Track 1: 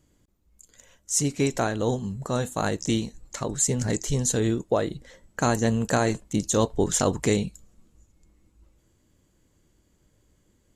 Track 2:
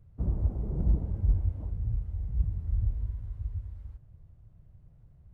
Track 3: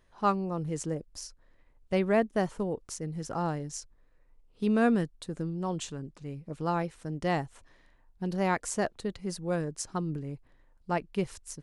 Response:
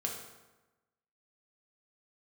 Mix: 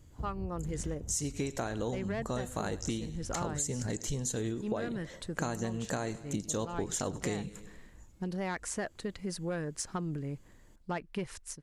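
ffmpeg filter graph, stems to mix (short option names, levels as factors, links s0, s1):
-filter_complex "[0:a]volume=1.26,asplit=2[s0][s1];[s1]volume=0.0944[s2];[1:a]acompressor=threshold=0.0355:ratio=6,volume=0.596[s3];[2:a]adynamicequalizer=threshold=0.00447:dfrequency=1800:dqfactor=1.3:tfrequency=1800:tqfactor=1.3:attack=5:release=100:ratio=0.375:range=3:mode=boostabove:tftype=bell,dynaudnorm=f=230:g=3:m=5.01,asoftclip=type=tanh:threshold=0.376,volume=0.251[s4];[s2]aecho=0:1:100|200|300|400|500|600:1|0.46|0.212|0.0973|0.0448|0.0206[s5];[s0][s3][s4][s5]amix=inputs=4:normalize=0,acompressor=threshold=0.0251:ratio=6"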